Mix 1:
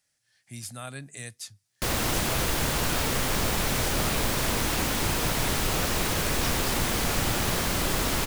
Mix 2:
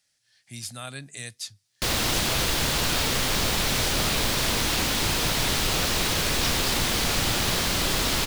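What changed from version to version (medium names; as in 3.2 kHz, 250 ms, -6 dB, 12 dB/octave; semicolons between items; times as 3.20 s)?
master: add peaking EQ 4 kHz +7 dB 1.5 oct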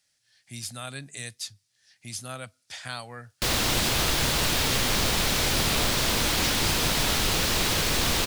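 background: entry +1.60 s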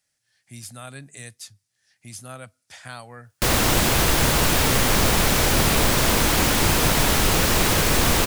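background +7.5 dB; master: add peaking EQ 4 kHz -7 dB 1.5 oct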